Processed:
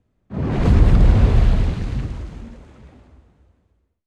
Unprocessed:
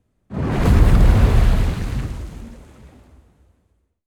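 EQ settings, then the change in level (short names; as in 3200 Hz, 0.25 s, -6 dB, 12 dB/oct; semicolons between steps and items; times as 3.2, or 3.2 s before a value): dynamic EQ 1400 Hz, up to -4 dB, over -40 dBFS, Q 0.74; air absorption 80 m; 0.0 dB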